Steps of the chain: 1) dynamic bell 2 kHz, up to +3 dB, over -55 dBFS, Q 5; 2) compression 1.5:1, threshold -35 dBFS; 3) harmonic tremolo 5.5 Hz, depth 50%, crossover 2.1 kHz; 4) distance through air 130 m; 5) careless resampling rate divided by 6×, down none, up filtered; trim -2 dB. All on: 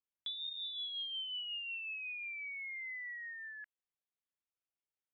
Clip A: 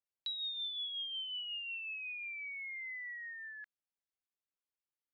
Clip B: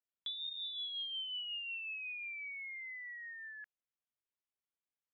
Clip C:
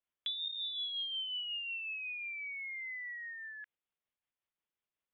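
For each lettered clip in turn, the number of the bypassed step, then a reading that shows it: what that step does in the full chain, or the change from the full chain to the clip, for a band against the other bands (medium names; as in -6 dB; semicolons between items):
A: 5, momentary loudness spread change +1 LU; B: 1, momentary loudness spread change +1 LU; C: 4, crest factor change +3.5 dB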